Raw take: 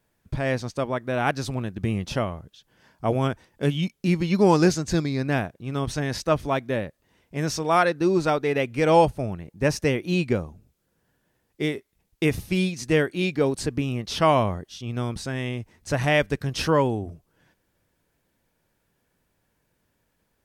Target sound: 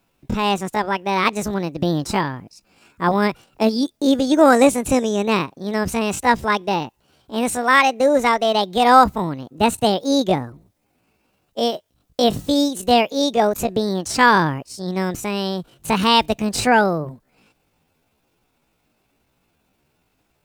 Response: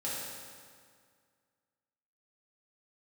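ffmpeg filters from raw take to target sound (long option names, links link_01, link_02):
-filter_complex "[0:a]acrossover=split=9400[link_01][link_02];[link_02]acompressor=threshold=-57dB:ratio=4:attack=1:release=60[link_03];[link_01][link_03]amix=inputs=2:normalize=0,asetrate=68011,aresample=44100,atempo=0.64842,volume=5.5dB"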